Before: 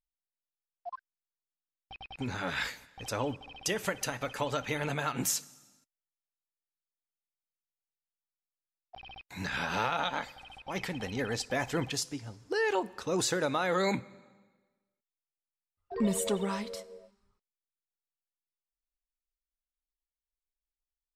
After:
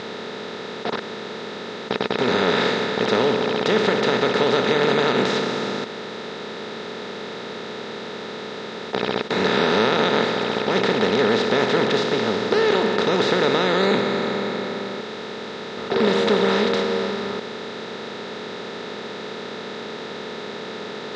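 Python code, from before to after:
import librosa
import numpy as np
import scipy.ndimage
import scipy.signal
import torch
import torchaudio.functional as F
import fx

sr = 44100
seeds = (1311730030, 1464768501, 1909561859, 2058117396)

y = fx.bin_compress(x, sr, power=0.2)
y = fx.cabinet(y, sr, low_hz=110.0, low_slope=12, high_hz=4400.0, hz=(230.0, 430.0, 3700.0), db=(3, 9, 7))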